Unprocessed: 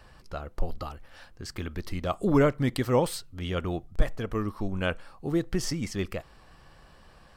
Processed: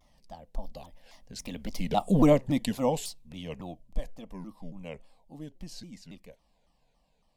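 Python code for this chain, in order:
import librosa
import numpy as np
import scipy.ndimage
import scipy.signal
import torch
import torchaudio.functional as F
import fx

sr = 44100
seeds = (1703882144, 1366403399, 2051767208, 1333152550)

y = fx.doppler_pass(x, sr, speed_mps=25, closest_m=12.0, pass_at_s=2.07)
y = fx.fixed_phaser(y, sr, hz=370.0, stages=6)
y = fx.vibrato_shape(y, sr, shape='saw_down', rate_hz=3.6, depth_cents=250.0)
y = F.gain(torch.from_numpy(y), 5.5).numpy()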